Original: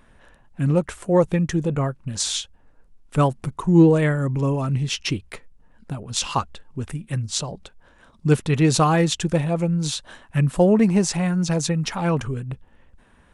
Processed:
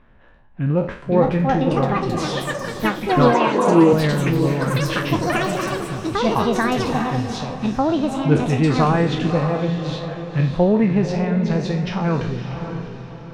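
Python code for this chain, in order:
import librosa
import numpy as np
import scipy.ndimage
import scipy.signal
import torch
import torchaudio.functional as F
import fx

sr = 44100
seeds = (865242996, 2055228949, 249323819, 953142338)

p1 = fx.spec_trails(x, sr, decay_s=0.44)
p2 = fx.air_absorb(p1, sr, metres=280.0)
p3 = p2 + fx.echo_diffused(p2, sr, ms=573, feedback_pct=40, wet_db=-7.5, dry=0)
p4 = fx.echo_pitch(p3, sr, ms=716, semitones=7, count=3, db_per_echo=-3.0)
y = fx.cabinet(p4, sr, low_hz=220.0, low_slope=12, high_hz=9800.0, hz=(380.0, 550.0, 980.0, 2600.0, 5200.0), db=(5, 6, 9, 5, -4), at=(3.34, 3.93))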